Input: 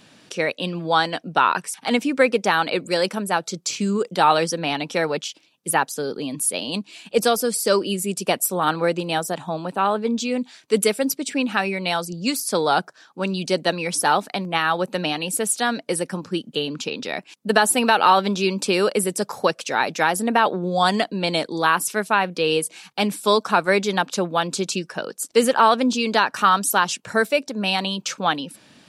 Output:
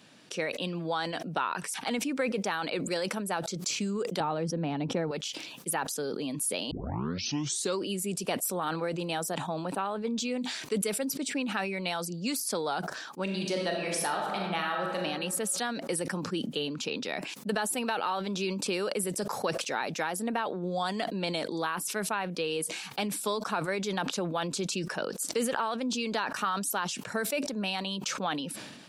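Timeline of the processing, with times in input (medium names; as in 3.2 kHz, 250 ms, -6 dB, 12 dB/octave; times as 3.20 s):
4.20–5.11 s: tilt EQ -4.5 dB/octave
6.71 s: tape start 1.09 s
13.23–15.02 s: reverb throw, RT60 1.2 s, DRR 0.5 dB
whole clip: compression 5:1, threshold -23 dBFS; high-pass 100 Hz; decay stretcher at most 40 dB/s; trim -5.5 dB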